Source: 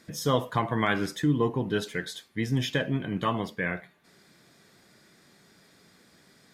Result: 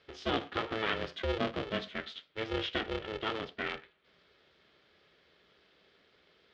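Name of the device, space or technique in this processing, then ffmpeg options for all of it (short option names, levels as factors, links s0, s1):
ring modulator pedal into a guitar cabinet: -af "aeval=exprs='val(0)*sgn(sin(2*PI*220*n/s))':c=same,highpass=93,equalizer=f=110:t=q:w=4:g=-9,equalizer=f=890:t=q:w=4:g=-8,equalizer=f=3200:t=q:w=4:g=6,lowpass=f=4100:w=0.5412,lowpass=f=4100:w=1.3066,volume=0.501"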